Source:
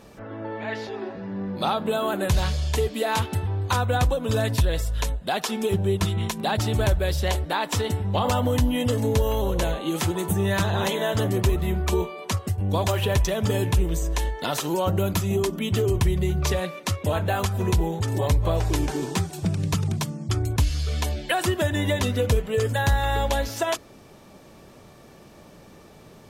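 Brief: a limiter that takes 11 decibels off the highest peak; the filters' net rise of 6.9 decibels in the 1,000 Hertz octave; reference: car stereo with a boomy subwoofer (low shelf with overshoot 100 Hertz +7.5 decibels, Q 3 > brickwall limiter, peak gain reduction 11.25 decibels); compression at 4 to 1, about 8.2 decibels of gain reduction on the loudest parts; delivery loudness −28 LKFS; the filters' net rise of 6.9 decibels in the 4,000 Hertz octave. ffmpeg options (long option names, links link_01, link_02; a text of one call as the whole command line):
ffmpeg -i in.wav -af "equalizer=frequency=1000:width_type=o:gain=8.5,equalizer=frequency=4000:width_type=o:gain=8,acompressor=threshold=-25dB:ratio=4,alimiter=limit=-20.5dB:level=0:latency=1,lowshelf=frequency=100:width_type=q:width=3:gain=7.5,volume=2dB,alimiter=limit=-19dB:level=0:latency=1" out.wav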